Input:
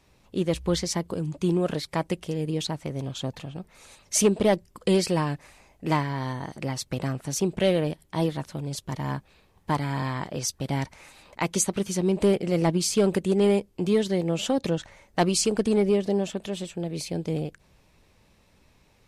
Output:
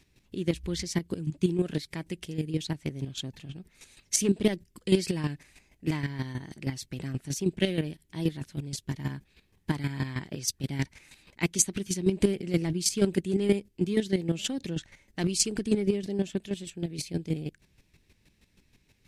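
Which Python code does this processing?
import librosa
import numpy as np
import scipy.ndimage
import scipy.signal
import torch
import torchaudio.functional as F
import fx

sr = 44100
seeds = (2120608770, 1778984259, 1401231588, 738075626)

y = fx.chopper(x, sr, hz=6.3, depth_pct=65, duty_pct=20)
y = fx.band_shelf(y, sr, hz=800.0, db=-10.5, octaves=1.7)
y = y * 10.0 ** (2.5 / 20.0)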